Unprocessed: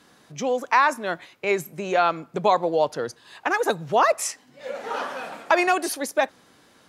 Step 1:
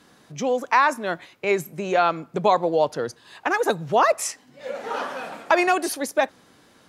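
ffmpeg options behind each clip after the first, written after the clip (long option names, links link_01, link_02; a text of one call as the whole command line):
ffmpeg -i in.wav -af "lowshelf=frequency=410:gain=3" out.wav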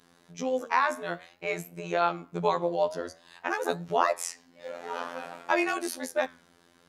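ffmpeg -i in.wav -af "afftfilt=real='hypot(re,im)*cos(PI*b)':imag='0':win_size=2048:overlap=0.75,flanger=delay=6.6:depth=8.4:regen=85:speed=0.52:shape=triangular,volume=1dB" out.wav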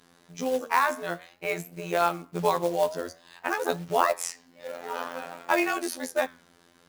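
ffmpeg -i in.wav -af "acrusher=bits=4:mode=log:mix=0:aa=0.000001,volume=1.5dB" out.wav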